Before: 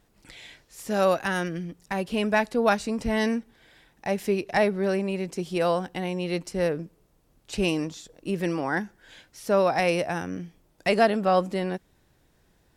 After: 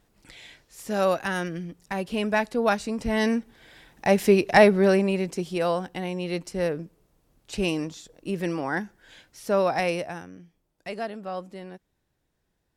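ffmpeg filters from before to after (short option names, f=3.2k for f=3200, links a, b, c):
-af "volume=7dB,afade=t=in:st=3.01:d=1.12:silence=0.398107,afade=t=out:st=4.71:d=0.86:silence=0.398107,afade=t=out:st=9.77:d=0.55:silence=0.281838"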